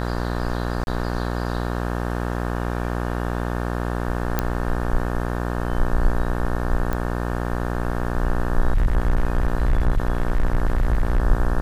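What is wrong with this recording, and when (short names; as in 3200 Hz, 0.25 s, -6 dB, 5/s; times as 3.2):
buzz 60 Hz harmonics 30 -25 dBFS
0.84–0.87 gap 31 ms
4.39 pop -6 dBFS
6.93 pop -13 dBFS
8.73–11.2 clipped -13.5 dBFS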